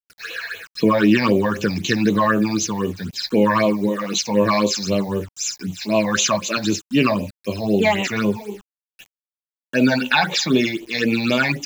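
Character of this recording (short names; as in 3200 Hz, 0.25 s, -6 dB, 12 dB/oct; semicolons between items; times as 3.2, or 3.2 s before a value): a quantiser's noise floor 8-bit, dither none; phasing stages 8, 3.9 Hz, lowest notch 370–1600 Hz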